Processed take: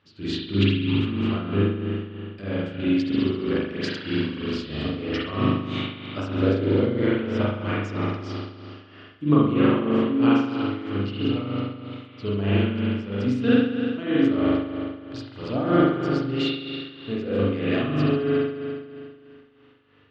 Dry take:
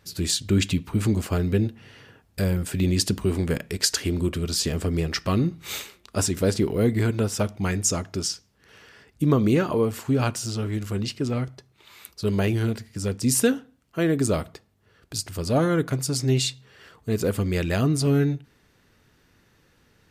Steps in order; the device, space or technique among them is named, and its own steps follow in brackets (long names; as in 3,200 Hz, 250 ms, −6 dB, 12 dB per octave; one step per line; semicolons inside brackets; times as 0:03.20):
combo amplifier with spring reverb and tremolo (spring reverb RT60 2.2 s, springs 40 ms, chirp 30 ms, DRR −8.5 dB; amplitude tremolo 3.1 Hz, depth 62%; loudspeaker in its box 86–4,100 Hz, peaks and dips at 180 Hz −4 dB, 280 Hz +8 dB, 1,200 Hz +6 dB, 3,000 Hz +9 dB)
level −7 dB